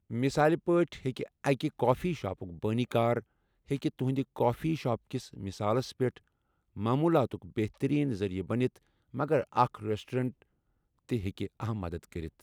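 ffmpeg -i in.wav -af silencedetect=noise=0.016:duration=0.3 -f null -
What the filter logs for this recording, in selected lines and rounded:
silence_start: 3.20
silence_end: 3.71 | silence_duration: 0.51
silence_start: 6.09
silence_end: 6.77 | silence_duration: 0.68
silence_start: 8.67
silence_end: 9.15 | silence_duration: 0.47
silence_start: 10.29
silence_end: 11.09 | silence_duration: 0.80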